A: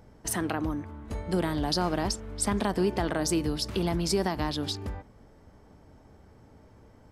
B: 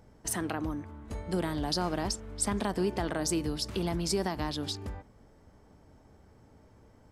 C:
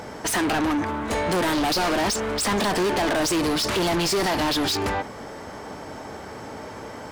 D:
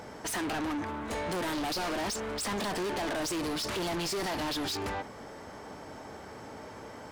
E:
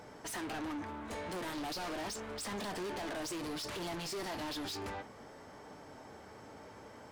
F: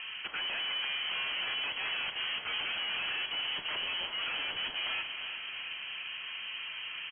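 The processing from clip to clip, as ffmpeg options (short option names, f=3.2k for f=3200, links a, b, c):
-af "equalizer=f=7.7k:w=1.3:g=3,volume=-3.5dB"
-filter_complex "[0:a]asplit=2[a][b];[b]highpass=f=720:p=1,volume=36dB,asoftclip=type=tanh:threshold=-15.5dB[c];[a][c]amix=inputs=2:normalize=0,lowpass=f=5.6k:p=1,volume=-6dB"
-af "asoftclip=type=tanh:threshold=-20.5dB,volume=-8dB"
-af "flanger=delay=6.7:depth=3.7:regen=-66:speed=0.53:shape=sinusoidal,volume=-3dB"
-filter_complex "[0:a]asplit=2[a][b];[b]aeval=exprs='0.0211*sin(PI/2*2.82*val(0)/0.0211)':c=same,volume=-4dB[c];[a][c]amix=inputs=2:normalize=0,aecho=1:1:346|692|1038|1384|1730|2076|2422:0.316|0.18|0.103|0.0586|0.0334|0.019|0.0108,lowpass=f=2.8k:t=q:w=0.5098,lowpass=f=2.8k:t=q:w=0.6013,lowpass=f=2.8k:t=q:w=0.9,lowpass=f=2.8k:t=q:w=2.563,afreqshift=-3300"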